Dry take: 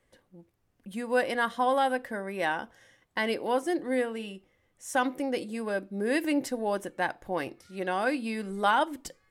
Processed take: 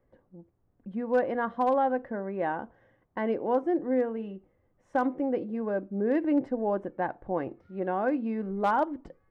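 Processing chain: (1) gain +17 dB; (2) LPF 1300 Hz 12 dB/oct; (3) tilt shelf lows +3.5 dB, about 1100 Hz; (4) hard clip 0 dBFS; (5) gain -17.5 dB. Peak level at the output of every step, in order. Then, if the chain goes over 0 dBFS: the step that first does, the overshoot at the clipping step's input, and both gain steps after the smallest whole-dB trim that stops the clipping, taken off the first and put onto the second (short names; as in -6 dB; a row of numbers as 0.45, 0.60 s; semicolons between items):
+5.5, +3.0, +3.5, 0.0, -17.5 dBFS; step 1, 3.5 dB; step 1 +13 dB, step 5 -13.5 dB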